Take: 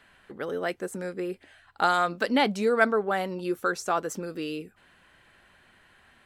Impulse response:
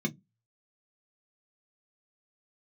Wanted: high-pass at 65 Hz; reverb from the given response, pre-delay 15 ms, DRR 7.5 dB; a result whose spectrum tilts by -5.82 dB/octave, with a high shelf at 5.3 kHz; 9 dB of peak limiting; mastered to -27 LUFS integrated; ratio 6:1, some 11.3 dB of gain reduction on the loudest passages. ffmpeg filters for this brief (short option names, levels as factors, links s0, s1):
-filter_complex "[0:a]highpass=65,highshelf=f=5300:g=4,acompressor=threshold=0.0398:ratio=6,alimiter=level_in=1.06:limit=0.0631:level=0:latency=1,volume=0.944,asplit=2[s0][s1];[1:a]atrim=start_sample=2205,adelay=15[s2];[s1][s2]afir=irnorm=-1:irlink=0,volume=0.251[s3];[s0][s3]amix=inputs=2:normalize=0,volume=1.5"